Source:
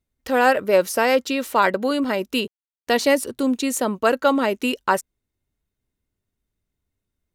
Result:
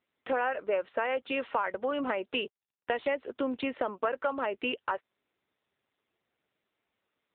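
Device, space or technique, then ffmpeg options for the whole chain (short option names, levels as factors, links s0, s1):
voicemail: -af "highpass=450,lowpass=2900,acompressor=threshold=0.0398:ratio=6,volume=1.19" -ar 8000 -c:a libopencore_amrnb -b:a 7950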